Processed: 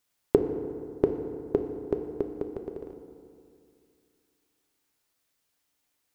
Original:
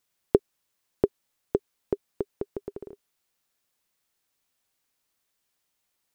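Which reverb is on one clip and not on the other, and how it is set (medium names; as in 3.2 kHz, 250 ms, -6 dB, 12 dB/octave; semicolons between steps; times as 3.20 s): FDN reverb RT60 2.4 s, low-frequency decay 1.1×, high-frequency decay 0.5×, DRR 5 dB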